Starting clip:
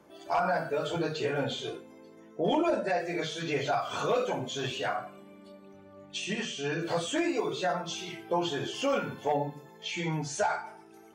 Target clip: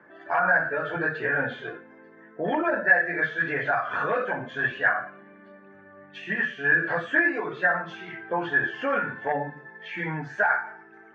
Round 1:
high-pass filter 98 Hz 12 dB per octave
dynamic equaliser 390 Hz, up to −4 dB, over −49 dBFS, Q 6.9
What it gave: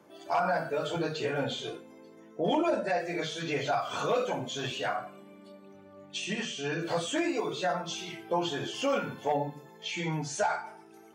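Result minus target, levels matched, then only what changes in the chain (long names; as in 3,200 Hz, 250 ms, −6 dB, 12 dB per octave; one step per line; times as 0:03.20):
2,000 Hz band −8.5 dB
add after dynamic equaliser: low-pass with resonance 1,700 Hz, resonance Q 12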